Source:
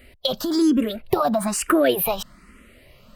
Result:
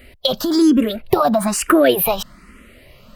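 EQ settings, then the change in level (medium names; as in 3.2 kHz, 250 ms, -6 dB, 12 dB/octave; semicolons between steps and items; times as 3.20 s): peaking EQ 8.3 kHz -2.5 dB 0.34 oct; +5.0 dB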